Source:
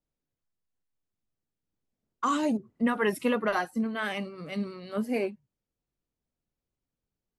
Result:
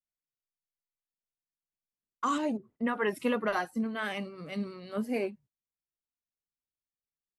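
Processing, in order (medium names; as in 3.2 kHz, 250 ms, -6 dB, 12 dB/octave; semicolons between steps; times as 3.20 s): 2.38–3.17 s: tone controls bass -5 dB, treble -8 dB; gate -53 dBFS, range -17 dB; trim -2.5 dB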